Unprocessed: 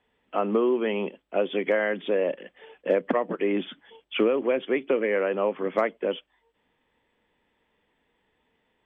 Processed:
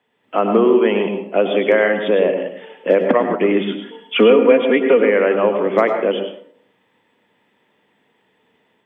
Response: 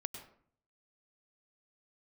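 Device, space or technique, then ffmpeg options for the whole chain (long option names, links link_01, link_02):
far laptop microphone: -filter_complex "[0:a]asettb=1/sr,asplit=3[link_01][link_02][link_03];[link_01]atrim=end=3.704[link_04];[link_02]atrim=start=3.7:end=5,asetpts=PTS-STARTPTS,afade=type=in:duration=0.004:curve=qsin,afade=type=out:start_time=1.296:duration=0.004:curve=qsin,aecho=1:1:4.2:0.71,atrim=end_sample=57330[link_05];[link_03]atrim=start=4.996[link_06];[link_04][link_05]acrossfade=duration=0.004:curve1=hsin:curve2=qsin[link_07];[link_07][link_06]acrossfade=duration=0.004:curve1=qsin:curve2=hsin[link_08];[1:a]atrim=start_sample=2205[link_09];[link_08][link_09]afir=irnorm=-1:irlink=0,highpass=frequency=110:width=0.5412,highpass=frequency=110:width=1.3066,dynaudnorm=framelen=160:gausssize=3:maxgain=5.5dB,volume=5.5dB"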